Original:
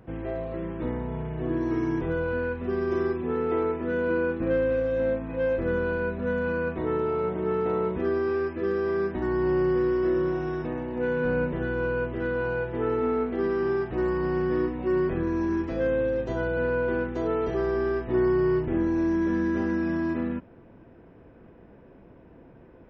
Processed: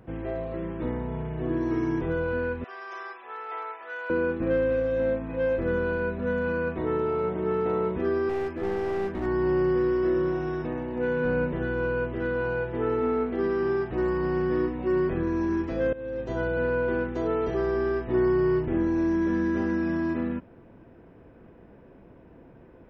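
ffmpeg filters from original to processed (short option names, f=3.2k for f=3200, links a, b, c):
-filter_complex "[0:a]asettb=1/sr,asplit=3[a][b][c];[a]atrim=end=2.644[d];[b]atrim=start=2.64:end=4.1,asetpts=PTS-STARTPTS,afade=t=in:d=0.004:c=qsin,afade=t=out:st=1.456:d=0.004:c=qsin,highpass=f=750:w=0.5412,highpass=f=750:w=1.3066[e];[c]atrim=start=4.096[f];[d][e]acrossfade=d=0.004:c1=hsin:c2=qsin[g];[g][f]acrossfade=d=0.004:c1=qsin:c2=hsin,asettb=1/sr,asplit=3[h][i][j];[h]atrim=end=8.294[k];[i]atrim=start=8.29:end=9.26,asetpts=PTS-STARTPTS,afade=t=in:d=0.004:c=qsin,afade=t=out:st=0.966:d=0.004:c=qsin,aeval=exprs='clip(val(0),-1,0.0316)':c=same[l];[j]atrim=start=9.256[m];[k][l]acrossfade=d=0.004:c1=hsin:c2=qsin[n];[n][m]acrossfade=d=0.004:c1=qsin:c2=hsin,asplit=2[o][p];[o]atrim=end=15.93,asetpts=PTS-STARTPTS,afade=t=out:st=15.926:d=0.004:c=hsin:silence=0.11885[q];[p]atrim=start=15.93,asetpts=PTS-STARTPTS,afade=t=in:d=0.46:silence=0.11885[r];[q][r]concat=n=2:v=0:a=1"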